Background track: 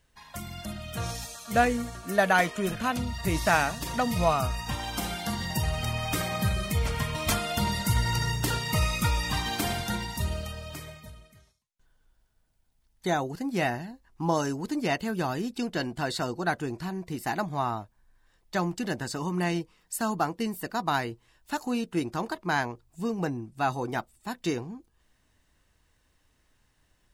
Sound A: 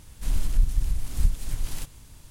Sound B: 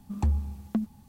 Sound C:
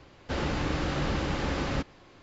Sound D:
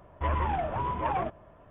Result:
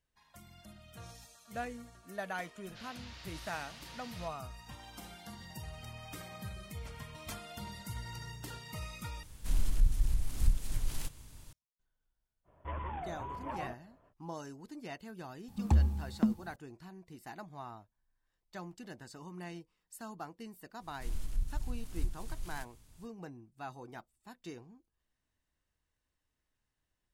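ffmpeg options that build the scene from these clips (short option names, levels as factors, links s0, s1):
-filter_complex "[1:a]asplit=2[s0][s1];[0:a]volume=0.141[s2];[3:a]bandpass=f=4500:t=q:w=1.2:csg=0[s3];[s0]acontrast=80[s4];[s2]asplit=2[s5][s6];[s5]atrim=end=9.234[s7];[s4]atrim=end=2.3,asetpts=PTS-STARTPTS,volume=0.266[s8];[s6]atrim=start=11.526[s9];[s3]atrim=end=2.22,asetpts=PTS-STARTPTS,volume=0.316,afade=t=in:d=0.004:c=hsin,afade=t=out:st=2.216:d=0.004:c=hsin,adelay=2460[s10];[4:a]atrim=end=1.7,asetpts=PTS-STARTPTS,volume=0.266,afade=t=in:d=0.05,afade=t=out:st=1.65:d=0.05,adelay=12440[s11];[2:a]atrim=end=1.08,asetpts=PTS-STARTPTS,volume=0.944,afade=t=in:d=0.004:c=hsin,afade=t=out:st=1.076:d=0.004:c=hsin,adelay=15480[s12];[s1]atrim=end=2.3,asetpts=PTS-STARTPTS,volume=0.237,afade=t=in:d=0.05,afade=t=out:st=2.25:d=0.05,adelay=20790[s13];[s7][s8]acrossfade=d=0.004:c1=hsin:c2=hsin[s14];[s14][s9]acrossfade=d=0.004:c1=hsin:c2=hsin[s15];[s15][s10][s11][s12][s13]amix=inputs=5:normalize=0"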